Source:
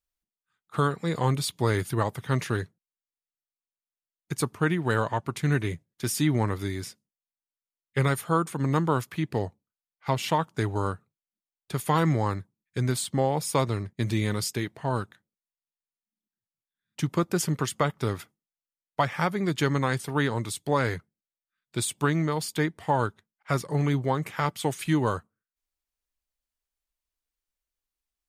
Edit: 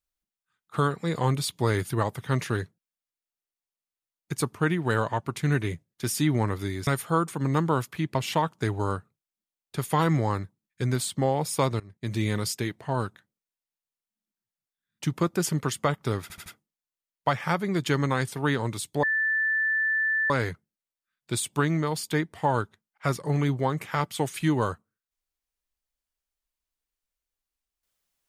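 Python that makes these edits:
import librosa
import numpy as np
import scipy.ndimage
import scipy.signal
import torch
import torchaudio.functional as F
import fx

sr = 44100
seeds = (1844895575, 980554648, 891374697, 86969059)

y = fx.edit(x, sr, fx.cut(start_s=6.87, length_s=1.19),
    fx.cut(start_s=9.34, length_s=0.77),
    fx.fade_in_from(start_s=13.76, length_s=0.44, floor_db=-23.5),
    fx.stutter(start_s=18.18, slice_s=0.08, count=4),
    fx.insert_tone(at_s=20.75, length_s=1.27, hz=1760.0, db=-22.0), tone=tone)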